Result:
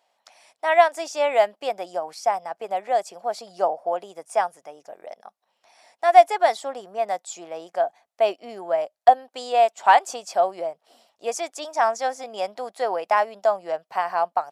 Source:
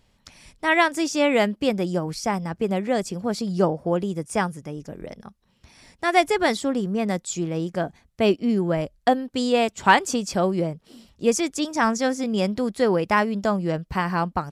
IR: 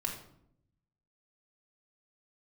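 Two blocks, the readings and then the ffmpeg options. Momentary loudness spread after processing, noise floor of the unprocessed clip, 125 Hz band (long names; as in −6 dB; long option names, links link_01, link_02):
14 LU, −64 dBFS, below −25 dB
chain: -af "highpass=frequency=700:width_type=q:width=4.9,volume=-5.5dB"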